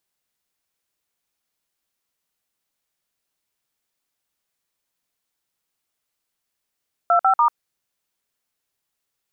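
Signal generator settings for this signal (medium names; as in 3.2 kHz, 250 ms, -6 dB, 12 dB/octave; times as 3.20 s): DTMF "25*", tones 93 ms, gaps 52 ms, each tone -15.5 dBFS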